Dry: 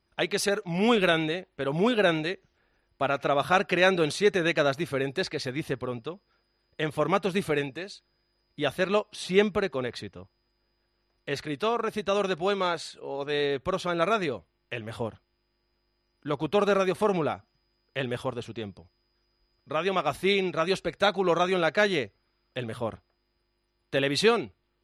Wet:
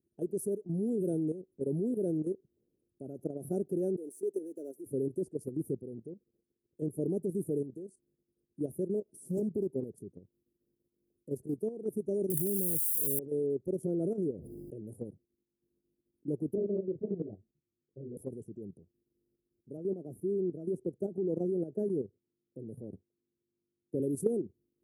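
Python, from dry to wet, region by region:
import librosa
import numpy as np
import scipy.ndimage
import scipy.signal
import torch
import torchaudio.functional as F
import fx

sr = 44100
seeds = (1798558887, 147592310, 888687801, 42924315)

y = fx.chain(x, sr, fx.halfwave_gain(db=-3.0),
    fx.highpass(hz=330.0, slope=24),
    fx.peak_eq(hz=870.0, db=-6.0, octaves=2.7), at=(3.96, 4.86))
y = fx.chain(y, sr, fx.high_shelf(hz=10000.0, db=4.5),
    fx.doppler_dist(depth_ms=0.8), at=(8.95, 11.58))
y = fx.chain(y, sr, fx.crossing_spikes(level_db=-25.5),
    fx.bass_treble(bass_db=14, treble_db=15),
    fx.over_compress(threshold_db=-25.0, ratio=-1.0), at=(12.3, 13.19))
y = fx.chain(y, sr, fx.high_shelf(hz=4200.0, db=-7.0),
    fx.pre_swell(db_per_s=23.0), at=(13.83, 14.79))
y = fx.chain(y, sr, fx.ladder_lowpass(hz=800.0, resonance_pct=40),
    fx.tilt_eq(slope=-3.5),
    fx.detune_double(cents=44), at=(16.55, 18.17))
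y = fx.chain(y, sr, fx.highpass(hz=65.0, slope=24),
    fx.high_shelf(hz=2600.0, db=-11.5), at=(19.77, 24.0))
y = scipy.signal.sosfilt(scipy.signal.ellip(3, 1.0, 50, [390.0, 9900.0], 'bandstop', fs=sr, output='sos'), y)
y = fx.level_steps(y, sr, step_db=11)
y = scipy.signal.sosfilt(scipy.signal.butter(2, 140.0, 'highpass', fs=sr, output='sos'), y)
y = F.gain(torch.from_numpy(y), 2.5).numpy()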